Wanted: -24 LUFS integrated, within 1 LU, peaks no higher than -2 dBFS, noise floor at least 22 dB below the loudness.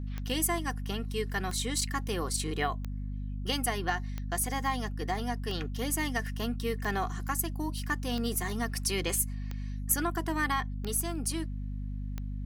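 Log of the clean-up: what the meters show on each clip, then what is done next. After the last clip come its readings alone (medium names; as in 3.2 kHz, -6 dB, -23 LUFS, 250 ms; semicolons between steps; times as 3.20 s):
clicks found 10; hum 50 Hz; highest harmonic 250 Hz; hum level -33 dBFS; loudness -32.5 LUFS; peak level -13.0 dBFS; loudness target -24.0 LUFS
-> de-click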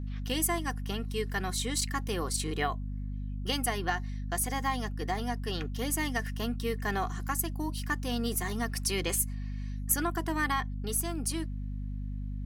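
clicks found 0; hum 50 Hz; highest harmonic 250 Hz; hum level -33 dBFS
-> de-hum 50 Hz, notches 5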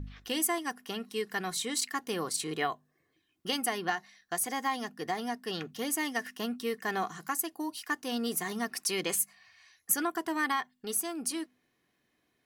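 hum not found; loudness -33.0 LUFS; peak level -13.5 dBFS; loudness target -24.0 LUFS
-> trim +9 dB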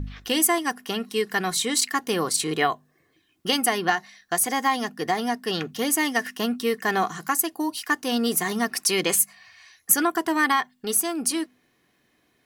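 loudness -24.0 LUFS; peak level -4.5 dBFS; noise floor -67 dBFS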